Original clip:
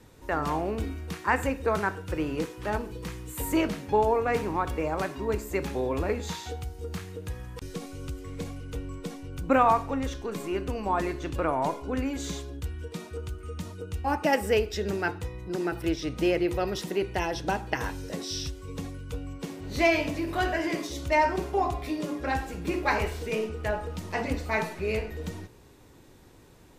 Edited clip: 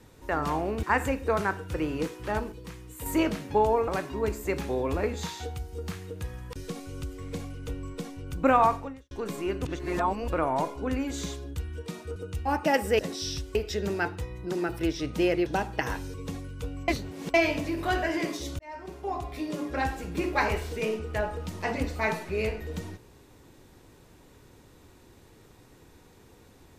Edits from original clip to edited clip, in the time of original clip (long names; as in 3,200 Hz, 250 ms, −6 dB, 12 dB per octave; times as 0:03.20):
0:00.83–0:01.21: remove
0:02.90–0:03.44: clip gain −5.5 dB
0:04.26–0:04.94: remove
0:09.81–0:10.17: fade out quadratic
0:10.71–0:11.34: reverse
0:13.22–0:13.75: remove
0:16.49–0:17.40: remove
0:18.08–0:18.64: move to 0:14.58
0:19.38–0:19.84: reverse
0:21.09–0:22.17: fade in